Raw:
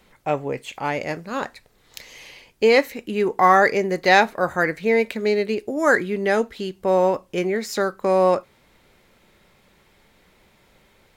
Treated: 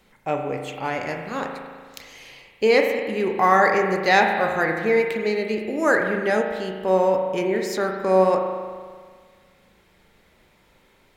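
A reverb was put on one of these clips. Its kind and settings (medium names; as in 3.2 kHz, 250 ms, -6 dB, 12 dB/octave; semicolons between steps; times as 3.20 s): spring tank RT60 1.7 s, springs 37 ms, chirp 70 ms, DRR 3 dB; trim -2.5 dB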